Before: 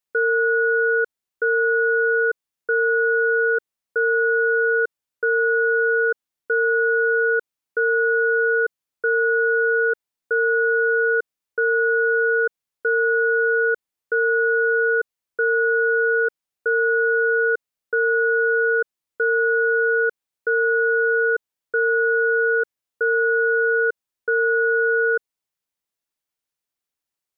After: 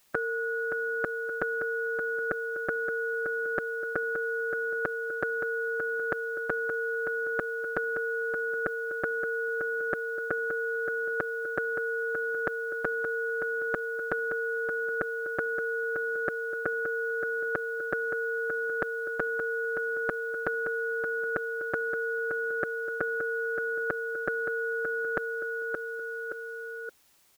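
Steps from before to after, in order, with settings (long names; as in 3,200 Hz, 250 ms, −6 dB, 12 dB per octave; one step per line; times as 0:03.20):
repeating echo 572 ms, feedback 29%, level −9.5 dB
every bin compressed towards the loudest bin 4 to 1
level +2.5 dB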